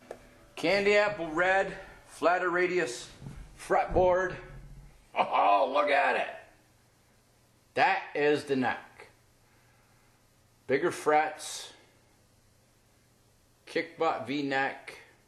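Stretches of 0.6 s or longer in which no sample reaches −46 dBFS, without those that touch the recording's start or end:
0:06.49–0:07.76
0:09.06–0:10.69
0:11.75–0:13.67

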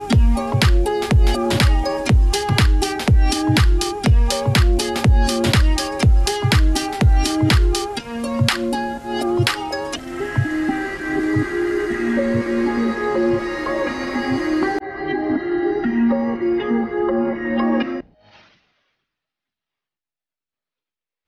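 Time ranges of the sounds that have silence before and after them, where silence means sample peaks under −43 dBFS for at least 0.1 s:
0:18.25–0:18.49

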